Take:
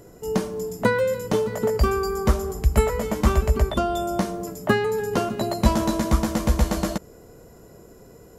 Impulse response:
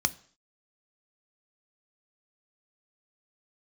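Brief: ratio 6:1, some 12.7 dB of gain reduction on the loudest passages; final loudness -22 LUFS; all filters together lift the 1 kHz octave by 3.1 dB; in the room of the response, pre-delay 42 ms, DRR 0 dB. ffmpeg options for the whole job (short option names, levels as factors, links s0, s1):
-filter_complex "[0:a]equalizer=f=1000:t=o:g=4,acompressor=threshold=0.0447:ratio=6,asplit=2[s0][s1];[1:a]atrim=start_sample=2205,adelay=42[s2];[s1][s2]afir=irnorm=-1:irlink=0,volume=0.422[s3];[s0][s3]amix=inputs=2:normalize=0,volume=2.11"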